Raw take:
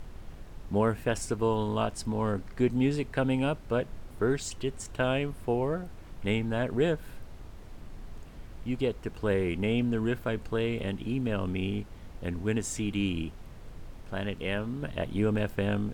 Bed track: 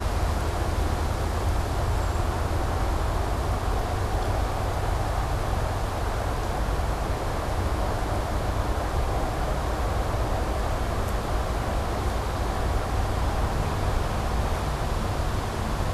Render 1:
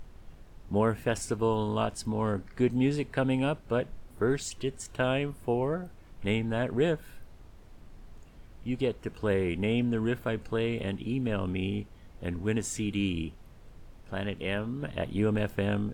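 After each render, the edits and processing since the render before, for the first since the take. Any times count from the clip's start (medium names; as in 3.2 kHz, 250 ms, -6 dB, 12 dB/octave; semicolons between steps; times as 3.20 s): noise print and reduce 6 dB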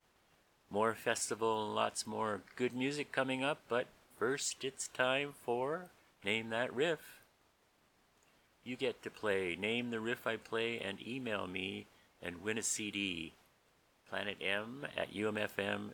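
high-pass 1 kHz 6 dB/octave; expander -60 dBFS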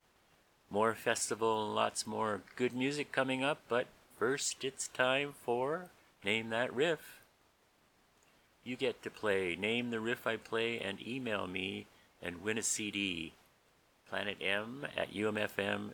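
trim +2 dB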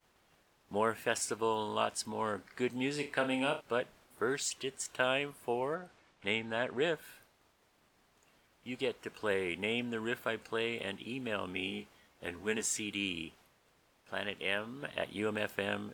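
2.92–3.61 s: flutter echo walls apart 5.9 m, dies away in 0.27 s; 5.75–6.93 s: low-pass 7 kHz; 11.54–12.66 s: doubling 14 ms -6.5 dB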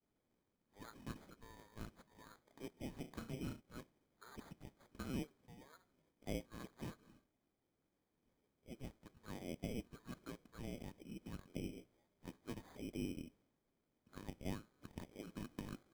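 band-pass filter 2.5 kHz, Q 10; sample-and-hold 16×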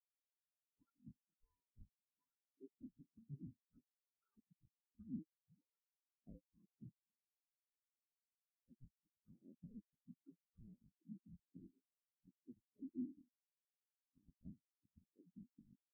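compression 2.5:1, threshold -54 dBFS, peak gain reduction 12.5 dB; spectral contrast expander 4:1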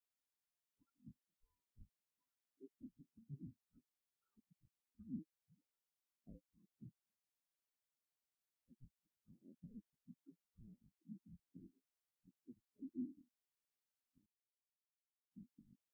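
14.26–15.31 s: mute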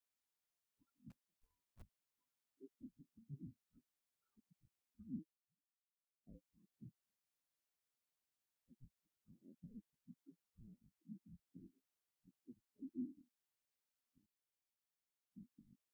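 1.10–1.83 s: block-companded coder 3-bit; 5.18–6.37 s: dip -20.5 dB, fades 0.21 s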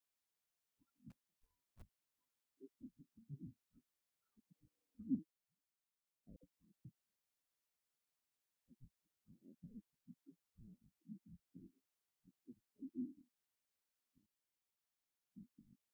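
4.49–5.15 s: small resonant body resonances 290/470 Hz, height 17 dB, ringing for 65 ms; 6.36–6.85 s: phase dispersion lows, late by 70 ms, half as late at 910 Hz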